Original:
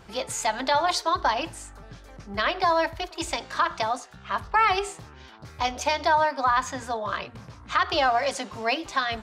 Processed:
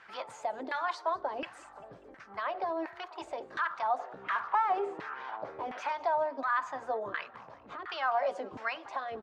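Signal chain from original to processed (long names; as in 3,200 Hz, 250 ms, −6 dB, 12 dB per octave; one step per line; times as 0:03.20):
harmonic and percussive parts rebalanced harmonic −5 dB
in parallel at +2.5 dB: downward compressor, threshold −35 dBFS, peak gain reduction 15.5 dB
on the sum: brickwall limiter −16 dBFS, peak gain reduction 8.5 dB
0:03.98–0:05.92: mid-hump overdrive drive 20 dB, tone 1,500 Hz, clips at −16 dBFS
auto-filter band-pass saw down 1.4 Hz 320–1,900 Hz
on a send: echo with shifted repeats 196 ms, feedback 54%, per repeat +33 Hz, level −22.5 dB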